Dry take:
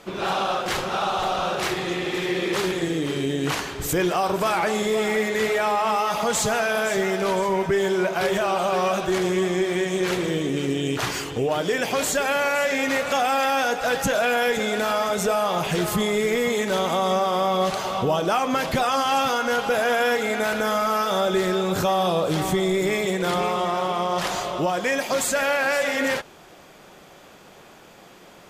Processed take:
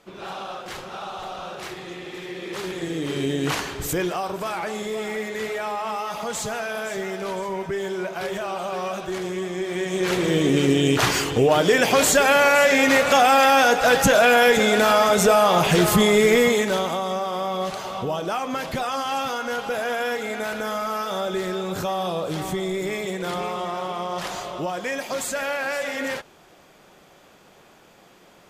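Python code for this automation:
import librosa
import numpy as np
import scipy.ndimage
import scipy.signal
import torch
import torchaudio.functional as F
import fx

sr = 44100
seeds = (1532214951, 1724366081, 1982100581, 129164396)

y = fx.gain(x, sr, db=fx.line((2.38, -9.5), (3.24, 0.5), (3.74, 0.5), (4.32, -6.0), (9.53, -6.0), (10.49, 6.0), (16.4, 6.0), (17.05, -4.5)))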